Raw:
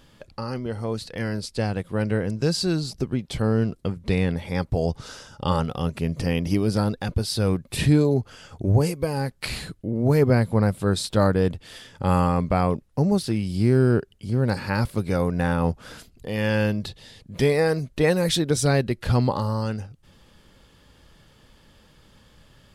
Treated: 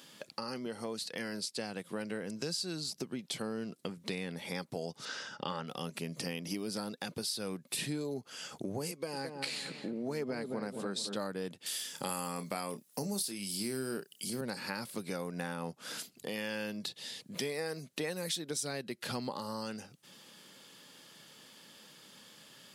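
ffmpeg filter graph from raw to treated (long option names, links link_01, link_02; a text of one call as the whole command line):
ffmpeg -i in.wav -filter_complex "[0:a]asettb=1/sr,asplit=3[link_01][link_02][link_03];[link_01]atrim=end=5.054[link_04];[link_02]atrim=start=5.05:end=5.67,asetpts=PTS-STARTPTS,afade=type=in:duration=0.004:curve=qsin,afade=type=out:start_time=0.616:duration=0.004:curve=qsin,lowpass=4200,equalizer=frequency=1700:width_type=o:width=0.6:gain=6.5,asoftclip=type=hard:threshold=-10dB[link_05];[link_03]atrim=start=5.666[link_06];[link_04][link_05]acrossfade=duration=0.004:curve1=hsin:curve2=qsin[link_07];[link_07][link_06]acrossfade=duration=0.004:curve1=qsin:curve2=hsin,asettb=1/sr,asplit=3[link_08][link_09][link_10];[link_08]atrim=end=8.914[link_11];[link_09]atrim=start=8.91:end=11.15,asetpts=PTS-STARTPTS,afade=type=in:duration=0.004:curve=qsin,afade=type=out:start_time=2.236:duration=0.004:curve=qsin,highpass=150,lowpass=7900,asplit=2[link_12][link_13];[link_13]adelay=219,lowpass=frequency=970:poles=1,volume=-6.5dB,asplit=2[link_14][link_15];[link_15]adelay=219,lowpass=frequency=970:poles=1,volume=0.48,asplit=2[link_16][link_17];[link_17]adelay=219,lowpass=frequency=970:poles=1,volume=0.48,asplit=2[link_18][link_19];[link_19]adelay=219,lowpass=frequency=970:poles=1,volume=0.48,asplit=2[link_20][link_21];[link_21]adelay=219,lowpass=frequency=970:poles=1,volume=0.48,asplit=2[link_22][link_23];[link_23]adelay=219,lowpass=frequency=970:poles=1,volume=0.48[link_24];[link_12][link_14][link_16][link_18][link_20][link_22][link_24]amix=inputs=7:normalize=0,atrim=end_sample=98784[link_25];[link_10]atrim=start=11.146[link_26];[link_11][link_25]acrossfade=duration=0.004:curve1=hsin:curve2=qsin[link_27];[link_27][link_26]acrossfade=duration=0.004:curve1=qsin:curve2=hsin,asettb=1/sr,asplit=3[link_28][link_29][link_30];[link_28]atrim=end=11.664[link_31];[link_29]atrim=start=11.66:end=14.41,asetpts=PTS-STARTPTS,afade=type=in:duration=0.004:curve=qsin,afade=type=out:start_time=2.746:duration=0.004:curve=qsin,highpass=100,aemphasis=mode=production:type=75kf,asplit=2[link_32][link_33];[link_33]adelay=30,volume=-11dB[link_34];[link_32][link_34]amix=inputs=2:normalize=0,atrim=end_sample=121275[link_35];[link_30]atrim=start=14.406[link_36];[link_31][link_35]acrossfade=duration=0.004:curve1=hsin:curve2=qsin[link_37];[link_37][link_36]acrossfade=duration=0.004:curve1=qsin:curve2=hsin,highpass=frequency=170:width=0.5412,highpass=frequency=170:width=1.3066,highshelf=frequency=2500:gain=11.5,acompressor=threshold=-33dB:ratio=4,volume=-3.5dB" out.wav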